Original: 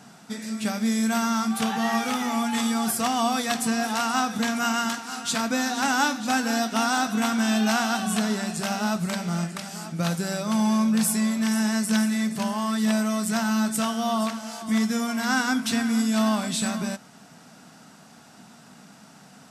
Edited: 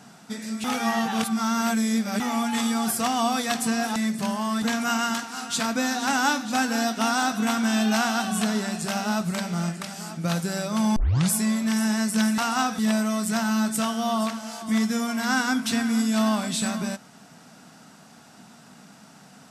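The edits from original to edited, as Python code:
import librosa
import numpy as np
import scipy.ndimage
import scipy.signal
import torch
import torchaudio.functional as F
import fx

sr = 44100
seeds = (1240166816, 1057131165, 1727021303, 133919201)

y = fx.edit(x, sr, fx.reverse_span(start_s=0.64, length_s=1.56),
    fx.swap(start_s=3.96, length_s=0.41, other_s=12.13, other_length_s=0.66),
    fx.tape_start(start_s=10.71, length_s=0.35), tone=tone)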